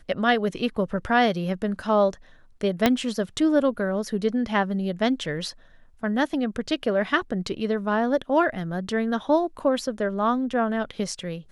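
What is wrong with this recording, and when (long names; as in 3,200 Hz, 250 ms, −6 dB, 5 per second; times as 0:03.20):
0:02.86: click −4 dBFS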